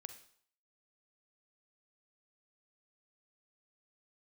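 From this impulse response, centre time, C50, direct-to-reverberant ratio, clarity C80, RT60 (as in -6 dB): 10 ms, 10.0 dB, 8.5 dB, 14.0 dB, 0.60 s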